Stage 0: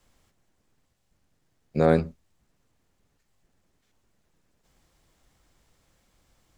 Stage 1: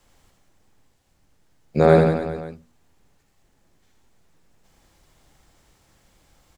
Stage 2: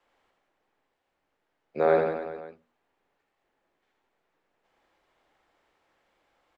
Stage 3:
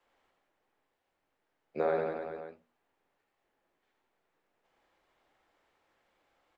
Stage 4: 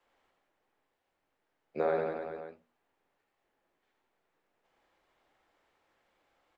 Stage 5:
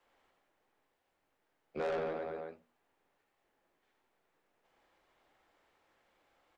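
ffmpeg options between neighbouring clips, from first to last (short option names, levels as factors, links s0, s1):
-filter_complex "[0:a]equalizer=f=840:w=7.2:g=3.5,bandreject=f=60:t=h:w=6,bandreject=f=120:t=h:w=6,bandreject=f=180:t=h:w=6,bandreject=f=240:t=h:w=6,asplit=2[s0][s1];[s1]aecho=0:1:80|172|277.8|399.5|539.4:0.631|0.398|0.251|0.158|0.1[s2];[s0][s2]amix=inputs=2:normalize=0,volume=1.78"
-filter_complex "[0:a]acrossover=split=320 3300:gain=0.1 1 0.112[s0][s1][s2];[s0][s1][s2]amix=inputs=3:normalize=0,volume=0.531"
-af "alimiter=limit=0.158:level=0:latency=1:release=431,flanger=delay=7.6:depth=4.3:regen=-74:speed=1.5:shape=triangular,volume=1.19"
-af anull
-af "asoftclip=type=tanh:threshold=0.0237,volume=1.12"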